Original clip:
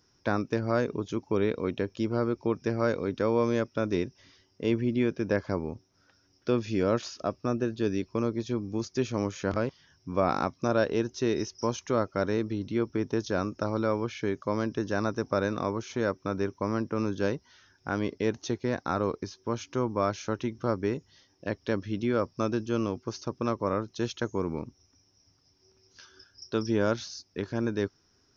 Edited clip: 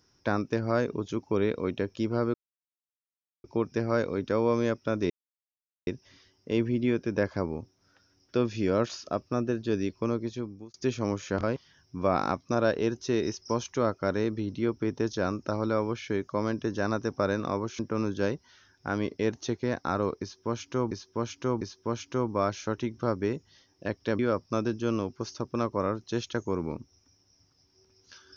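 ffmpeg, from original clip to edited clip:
ffmpeg -i in.wav -filter_complex "[0:a]asplit=8[link_01][link_02][link_03][link_04][link_05][link_06][link_07][link_08];[link_01]atrim=end=2.34,asetpts=PTS-STARTPTS,afade=type=out:start_time=2.336:duration=0.004:curve=hsin,apad=pad_dur=1.1[link_09];[link_02]atrim=start=2.34:end=4,asetpts=PTS-STARTPTS,afade=type=in:duration=0.004:curve=hsin,afade=type=out:start_time=1.656:duration=0.004:curve=hsin,apad=pad_dur=0.77[link_10];[link_03]atrim=start=4:end=8.87,asetpts=PTS-STARTPTS,afade=type=in:duration=0.004:curve=hsin,afade=type=out:start_time=4.09:duration=0.78:curve=qsin[link_11];[link_04]atrim=start=8.87:end=15.922,asetpts=PTS-STARTPTS,afade=type=in:duration=0.004:curve=hsin[link_12];[link_05]atrim=start=16.798:end=19.922[link_13];[link_06]atrim=start=19.218:end=19.922[link_14];[link_07]atrim=start=19.218:end=21.802[link_15];[link_08]atrim=start=22.058[link_16];[link_09][link_10][link_11][link_12]concat=n=4:v=0:a=1[link_17];[link_17][link_13]acrossfade=duration=0.004:curve1=hsin:curve2=hsin[link_18];[link_18][link_14]acrossfade=duration=0.004:curve1=hsin:curve2=hsin[link_19];[link_19][link_15]acrossfade=duration=0.004:curve1=hsin:curve2=hsin[link_20];[link_20][link_16]acrossfade=duration=0.004:curve1=hsin:curve2=hsin" out.wav

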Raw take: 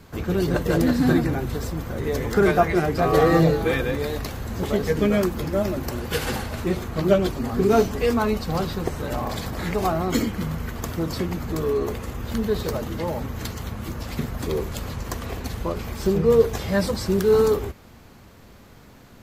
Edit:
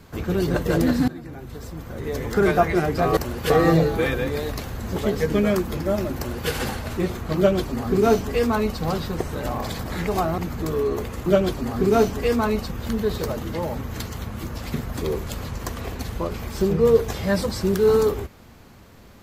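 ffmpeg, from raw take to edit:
ffmpeg -i in.wav -filter_complex "[0:a]asplit=7[link_01][link_02][link_03][link_04][link_05][link_06][link_07];[link_01]atrim=end=1.08,asetpts=PTS-STARTPTS,afade=type=out:start_time=1.076:duration=0.004:curve=hsin:silence=0.0794328[link_08];[link_02]atrim=start=1.08:end=3.172,asetpts=PTS-STARTPTS,afade=type=in:duration=1.49:silence=0.0794328[link_09];[link_03]atrim=start=5.838:end=6.172[link_10];[link_04]atrim=start=3.168:end=10.052[link_11];[link_05]atrim=start=11.278:end=12.162[link_12];[link_06]atrim=start=7.038:end=8.492[link_13];[link_07]atrim=start=12.158[link_14];[link_08][link_09]concat=n=2:v=0:a=1[link_15];[link_15][link_10]acrossfade=duration=0.004:curve1=hsin:curve2=hsin[link_16];[link_16][link_11]acrossfade=duration=0.004:curve1=hsin:curve2=hsin[link_17];[link_17][link_12]acrossfade=duration=0.004:curve1=hsin:curve2=hsin[link_18];[link_18][link_13]acrossfade=duration=0.004:curve1=hsin:curve2=hsin[link_19];[link_19][link_14]acrossfade=duration=0.004:curve1=hsin:curve2=hsin" out.wav

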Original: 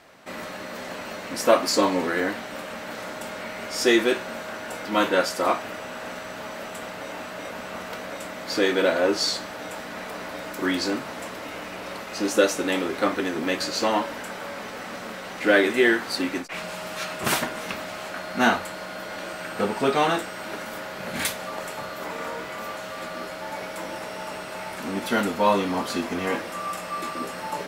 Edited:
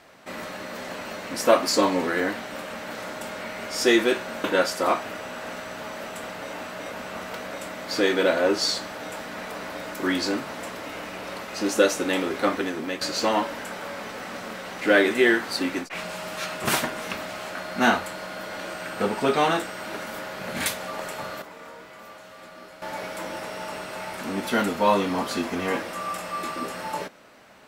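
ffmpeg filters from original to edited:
ffmpeg -i in.wav -filter_complex "[0:a]asplit=5[link_01][link_02][link_03][link_04][link_05];[link_01]atrim=end=4.442[link_06];[link_02]atrim=start=5.028:end=13.6,asetpts=PTS-STARTPTS,afade=type=out:start_time=8.102:duration=0.47:silence=0.446684[link_07];[link_03]atrim=start=13.6:end=22.012,asetpts=PTS-STARTPTS,afade=type=in:duration=0.004:curve=hsin:silence=0.446684[link_08];[link_04]atrim=start=22.008:end=23.412,asetpts=PTS-STARTPTS,volume=-10.5dB[link_09];[link_05]atrim=start=23.408[link_10];[link_07][link_08]concat=n=2:v=0:a=1[link_11];[link_06][link_11]acrossfade=duration=0.004:curve1=hsin:curve2=hsin[link_12];[link_12][link_09]acrossfade=duration=0.004:curve1=hsin:curve2=hsin[link_13];[link_13][link_10]acrossfade=duration=0.004:curve1=hsin:curve2=hsin" out.wav

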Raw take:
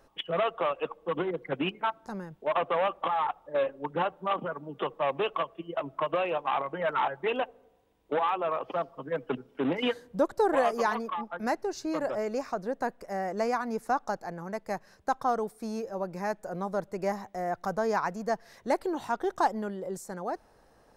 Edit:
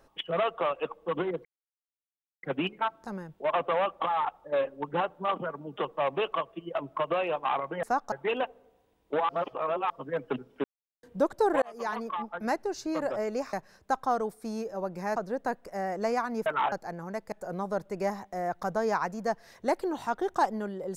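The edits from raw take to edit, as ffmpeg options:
ffmpeg -i in.wav -filter_complex "[0:a]asplit=14[link_01][link_02][link_03][link_04][link_05][link_06][link_07][link_08][link_09][link_10][link_11][link_12][link_13][link_14];[link_01]atrim=end=1.45,asetpts=PTS-STARTPTS,afade=type=out:start_time=1.446:duration=0.004:curve=hsin,apad=pad_dur=0.98[link_15];[link_02]atrim=start=1.45:end=6.852,asetpts=PTS-STARTPTS,afade=type=in:duration=0.004:curve=hsin[link_16];[link_03]atrim=start=13.818:end=14.112[link_17];[link_04]atrim=start=7.108:end=8.282[link_18];[link_05]atrim=start=8.278:end=8.892,asetpts=PTS-STARTPTS,areverse[link_19];[link_06]atrim=start=8.888:end=9.63,asetpts=PTS-STARTPTS,afade=type=out:start_time=0.738:duration=0.004:curve=hsin[link_20];[link_07]atrim=start=9.63:end=10.02,asetpts=PTS-STARTPTS,volume=0[link_21];[link_08]atrim=start=10.02:end=10.61,asetpts=PTS-STARTPTS,afade=type=in:duration=0.004:curve=hsin,afade=type=out:start_time=0.586:duration=0.004:curve=hsin[link_22];[link_09]atrim=start=10.61:end=12.522,asetpts=PTS-STARTPTS,afade=type=in:duration=0.48[link_23];[link_10]atrim=start=14.708:end=16.342[link_24];[link_11]atrim=start=12.518:end=13.822[link_25];[link_12]atrim=start=6.848:end=7.112[link_26];[link_13]atrim=start=14.108:end=14.712[link_27];[link_14]atrim=start=16.338[link_28];[link_15][link_16]concat=n=2:v=0:a=1[link_29];[link_29][link_17]acrossfade=duration=0.004:curve1=hsin:curve2=hsin[link_30];[link_30][link_18]acrossfade=duration=0.004:curve1=hsin:curve2=hsin[link_31];[link_31][link_19]acrossfade=duration=0.004:curve1=hsin:curve2=hsin[link_32];[link_20][link_21][link_22][link_23]concat=n=4:v=0:a=1[link_33];[link_32][link_33]acrossfade=duration=0.004:curve1=hsin:curve2=hsin[link_34];[link_34][link_24]acrossfade=duration=0.004:curve1=hsin:curve2=hsin[link_35];[link_35][link_25]acrossfade=duration=0.004:curve1=hsin:curve2=hsin[link_36];[link_36][link_26]acrossfade=duration=0.004:curve1=hsin:curve2=hsin[link_37];[link_37][link_27]acrossfade=duration=0.004:curve1=hsin:curve2=hsin[link_38];[link_38][link_28]acrossfade=duration=0.004:curve1=hsin:curve2=hsin" out.wav

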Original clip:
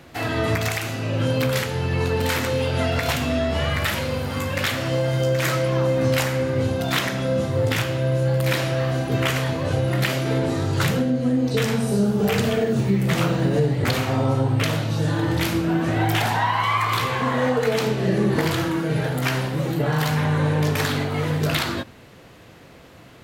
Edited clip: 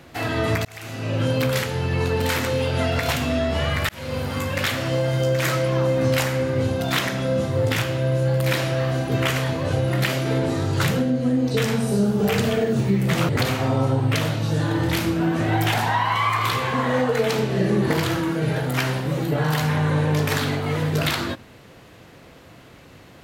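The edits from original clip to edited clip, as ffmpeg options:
ffmpeg -i in.wav -filter_complex "[0:a]asplit=4[link_01][link_02][link_03][link_04];[link_01]atrim=end=0.65,asetpts=PTS-STARTPTS,afade=type=out:start_time=0.646:duration=0.004:curve=hsin[link_05];[link_02]atrim=start=0.65:end=3.89,asetpts=PTS-STARTPTS,afade=type=in:duration=0.46,afade=type=out:start_time=3.236:duration=0.004:curve=hsin[link_06];[link_03]atrim=start=3.89:end=13.292,asetpts=PTS-STARTPTS,afade=type=in:duration=0.3[link_07];[link_04]atrim=start=13.768[link_08];[link_05][link_06][link_07]concat=n=3:v=0:a=1[link_09];[link_09][link_08]acrossfade=duration=0.004:curve1=hsin:curve2=hsin" out.wav

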